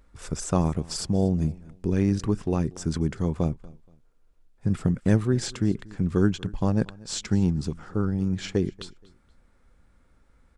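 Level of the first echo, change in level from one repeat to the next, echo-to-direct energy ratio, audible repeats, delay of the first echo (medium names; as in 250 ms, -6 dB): -22.5 dB, -11.0 dB, -22.0 dB, 2, 237 ms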